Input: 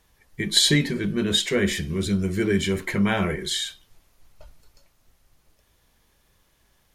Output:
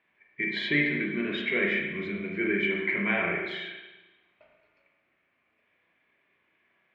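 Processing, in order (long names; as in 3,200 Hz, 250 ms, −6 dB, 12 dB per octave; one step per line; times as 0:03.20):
loudspeaker in its box 340–2,500 Hz, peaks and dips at 490 Hz −9 dB, 860 Hz −9 dB, 1,300 Hz −5 dB, 2,300 Hz +9 dB
spring reverb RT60 1.1 s, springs 34/46 ms, chirp 70 ms, DRR 0 dB
level −3 dB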